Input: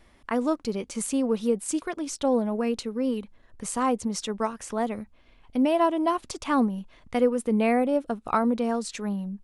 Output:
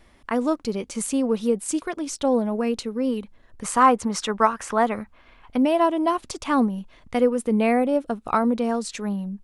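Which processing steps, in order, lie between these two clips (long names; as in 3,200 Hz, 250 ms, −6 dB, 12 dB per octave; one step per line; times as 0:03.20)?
0:03.64–0:05.58: parametric band 1,300 Hz +10.5 dB 1.8 octaves
level +2.5 dB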